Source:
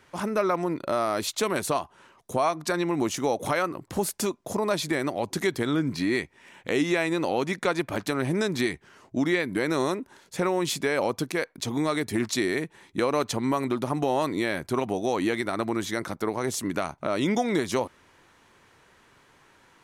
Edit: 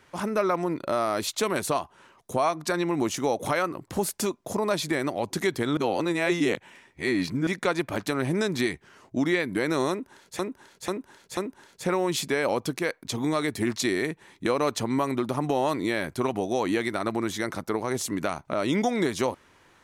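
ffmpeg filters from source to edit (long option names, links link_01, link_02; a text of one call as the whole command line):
ffmpeg -i in.wav -filter_complex "[0:a]asplit=6[link_01][link_02][link_03][link_04][link_05][link_06];[link_01]atrim=end=5.772[link_07];[link_02]atrim=start=5.768:end=7.472,asetpts=PTS-STARTPTS,areverse[link_08];[link_03]atrim=start=7.468:end=10.392[link_09];[link_04]atrim=start=9.898:end=10.392[link_10];[link_05]atrim=start=9.898:end=10.392[link_11];[link_06]atrim=start=9.898[link_12];[link_07][link_08]acrossfade=duration=0.004:curve1=hsin:curve2=hsin[link_13];[link_13][link_09]acrossfade=duration=0.004:curve1=hsin:curve2=hsin[link_14];[link_14][link_10]acrossfade=duration=0.004:curve1=hsin:curve2=hsin[link_15];[link_15][link_11]acrossfade=duration=0.004:curve1=hsin:curve2=hsin[link_16];[link_16][link_12]acrossfade=duration=0.004:curve1=hsin:curve2=hsin" out.wav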